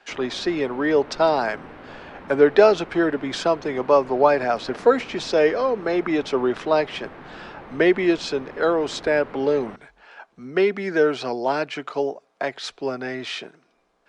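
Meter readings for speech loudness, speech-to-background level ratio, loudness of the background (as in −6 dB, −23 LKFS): −22.0 LKFS, 19.5 dB, −41.5 LKFS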